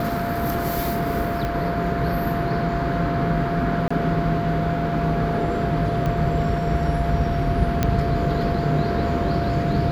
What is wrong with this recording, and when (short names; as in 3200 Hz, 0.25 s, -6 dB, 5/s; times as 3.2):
tone 690 Hz -26 dBFS
1.45 pop -14 dBFS
3.88–3.9 gap 25 ms
6.06 pop -14 dBFS
7.83 pop -6 dBFS